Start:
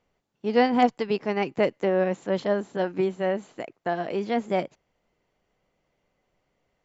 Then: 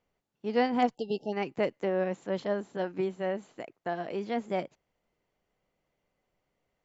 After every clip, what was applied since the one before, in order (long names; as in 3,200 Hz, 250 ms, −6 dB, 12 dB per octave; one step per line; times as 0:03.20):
time-frequency box erased 0:00.95–0:01.33, 870–2,700 Hz
level −6 dB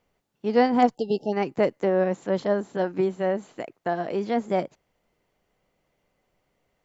dynamic equaliser 2,700 Hz, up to −6 dB, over −51 dBFS, Q 1.4
level +7 dB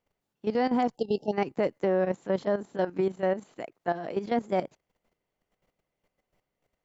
output level in coarse steps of 12 dB